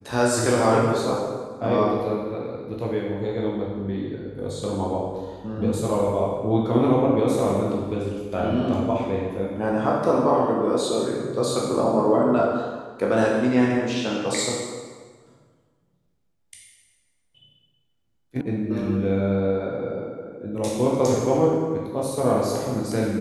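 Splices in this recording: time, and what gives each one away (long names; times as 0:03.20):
0:18.41: cut off before it has died away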